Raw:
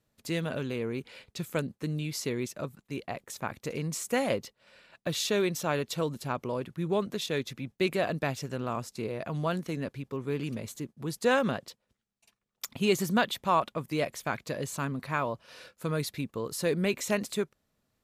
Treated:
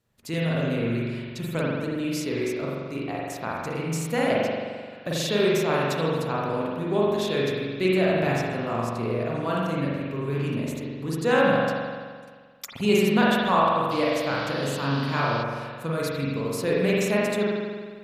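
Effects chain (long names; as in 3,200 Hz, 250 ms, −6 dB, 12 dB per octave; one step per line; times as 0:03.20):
spring reverb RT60 1.7 s, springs 43 ms, chirp 40 ms, DRR −5.5 dB
0:13.90–0:15.42: noise in a band 2,600–4,800 Hz −41 dBFS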